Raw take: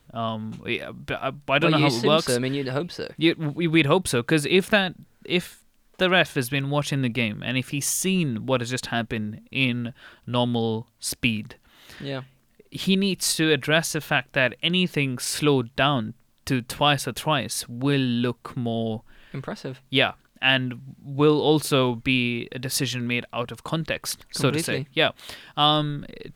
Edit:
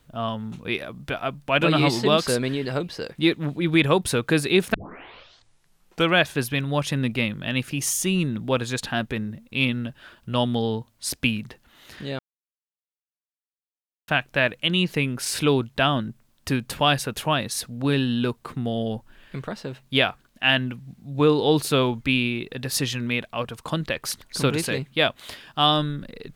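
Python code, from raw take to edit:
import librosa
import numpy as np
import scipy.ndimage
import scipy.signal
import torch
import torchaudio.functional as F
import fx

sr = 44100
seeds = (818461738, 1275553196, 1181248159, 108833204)

y = fx.edit(x, sr, fx.tape_start(start_s=4.74, length_s=1.44),
    fx.silence(start_s=12.19, length_s=1.89), tone=tone)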